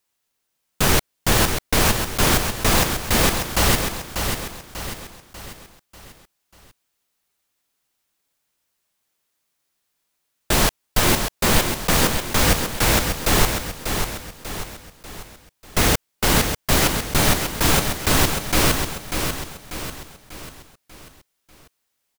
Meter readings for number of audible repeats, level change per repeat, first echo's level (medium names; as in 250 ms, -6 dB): 5, -6.5 dB, -6.5 dB